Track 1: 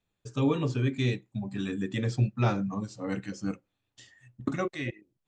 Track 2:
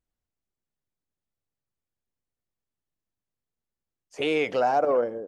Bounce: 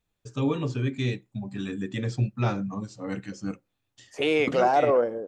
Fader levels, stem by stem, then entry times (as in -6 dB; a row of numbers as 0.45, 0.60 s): 0.0, +1.5 dB; 0.00, 0.00 s